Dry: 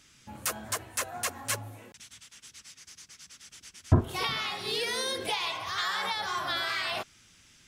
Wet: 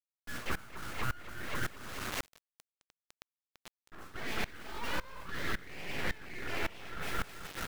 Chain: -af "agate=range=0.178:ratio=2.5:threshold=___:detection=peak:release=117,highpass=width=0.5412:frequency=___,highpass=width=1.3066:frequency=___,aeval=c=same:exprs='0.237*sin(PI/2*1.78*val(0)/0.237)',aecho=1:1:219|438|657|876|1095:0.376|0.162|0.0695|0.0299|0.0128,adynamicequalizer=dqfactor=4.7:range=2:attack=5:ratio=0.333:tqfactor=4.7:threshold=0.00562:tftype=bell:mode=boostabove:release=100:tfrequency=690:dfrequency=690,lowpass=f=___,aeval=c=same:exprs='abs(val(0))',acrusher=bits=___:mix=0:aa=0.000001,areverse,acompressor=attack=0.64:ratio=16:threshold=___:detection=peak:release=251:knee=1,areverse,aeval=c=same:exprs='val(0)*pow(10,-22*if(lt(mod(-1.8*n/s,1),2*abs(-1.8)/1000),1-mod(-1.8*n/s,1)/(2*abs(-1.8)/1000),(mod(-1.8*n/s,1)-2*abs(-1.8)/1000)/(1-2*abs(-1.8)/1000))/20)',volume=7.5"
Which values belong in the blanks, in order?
0.00158, 500, 500, 1k, 7, 0.01